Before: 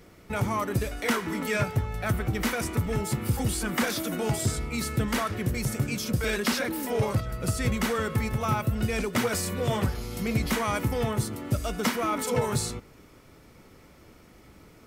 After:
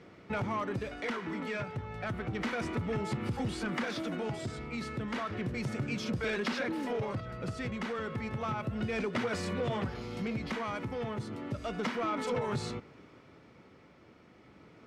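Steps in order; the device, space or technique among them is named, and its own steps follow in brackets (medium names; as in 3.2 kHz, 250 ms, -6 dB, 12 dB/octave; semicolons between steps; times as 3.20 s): AM radio (band-pass 110–3600 Hz; compression, threshold -27 dBFS, peak gain reduction 7 dB; saturation -24 dBFS, distortion -19 dB; tremolo 0.32 Hz, depth 36%)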